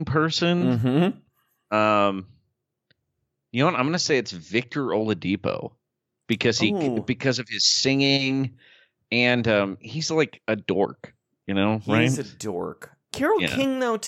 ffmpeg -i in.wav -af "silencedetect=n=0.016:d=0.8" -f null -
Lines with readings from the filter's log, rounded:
silence_start: 2.22
silence_end: 3.54 | silence_duration: 1.32